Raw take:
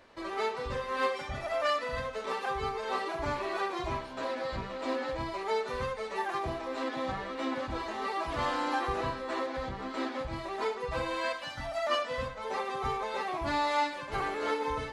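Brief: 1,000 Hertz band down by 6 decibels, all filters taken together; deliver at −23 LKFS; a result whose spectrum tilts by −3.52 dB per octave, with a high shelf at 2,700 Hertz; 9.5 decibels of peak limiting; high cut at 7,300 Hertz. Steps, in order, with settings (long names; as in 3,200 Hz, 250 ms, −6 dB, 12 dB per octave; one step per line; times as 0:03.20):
low-pass filter 7,300 Hz
parametric band 1,000 Hz −7 dB
high-shelf EQ 2,700 Hz −3.5 dB
level +16.5 dB
brickwall limiter −14 dBFS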